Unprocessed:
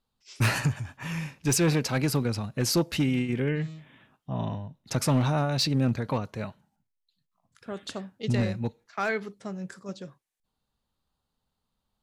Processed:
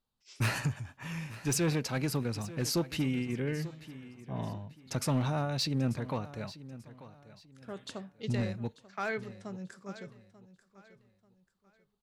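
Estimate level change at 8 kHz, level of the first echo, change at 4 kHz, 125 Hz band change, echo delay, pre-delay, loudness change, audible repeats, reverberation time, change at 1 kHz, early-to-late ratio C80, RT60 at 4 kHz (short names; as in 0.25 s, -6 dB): -6.0 dB, -16.5 dB, -6.0 dB, -6.0 dB, 0.889 s, none, -6.0 dB, 2, none, -6.0 dB, none, none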